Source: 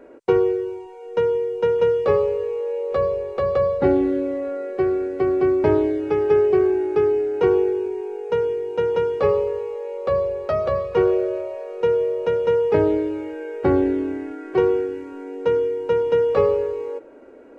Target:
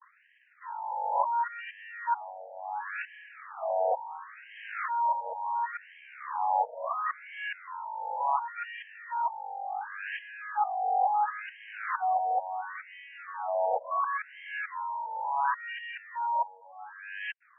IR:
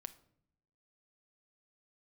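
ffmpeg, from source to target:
-af "areverse,aeval=exprs='abs(val(0))':channel_layout=same,afftfilt=real='re*between(b*sr/1024,650*pow(2300/650,0.5+0.5*sin(2*PI*0.71*pts/sr))/1.41,650*pow(2300/650,0.5+0.5*sin(2*PI*0.71*pts/sr))*1.41)':imag='im*between(b*sr/1024,650*pow(2300/650,0.5+0.5*sin(2*PI*0.71*pts/sr))/1.41,650*pow(2300/650,0.5+0.5*sin(2*PI*0.71*pts/sr))*1.41)':win_size=1024:overlap=0.75,volume=-1.5dB"

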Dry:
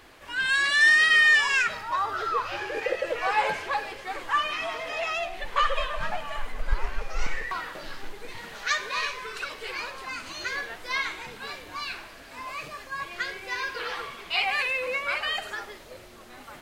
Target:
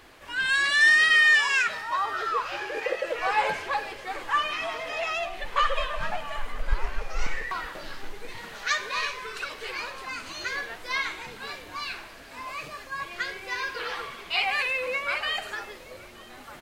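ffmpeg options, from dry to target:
ffmpeg -i in.wav -filter_complex "[0:a]asettb=1/sr,asplit=3[link_01][link_02][link_03];[link_01]atrim=end=1.124[link_04];[link_02]atrim=start=1.12:end=3.19,asetpts=PTS-STARTPTS,afade=type=in:duration=0.004:curve=qsin,afade=type=out:start_time=2.066:duration=0.004:curve=qsin,lowshelf=frequency=160:gain=-10[link_05];[link_03]atrim=start=3.186[link_06];[link_04][link_05]acrossfade=duration=0.004:curve1=hsin:curve2=qsin[link_07];[link_07][link_06]acrossfade=duration=0.004:curve1=qsin:curve2=hsin,aecho=1:1:921:0.075" out.wav

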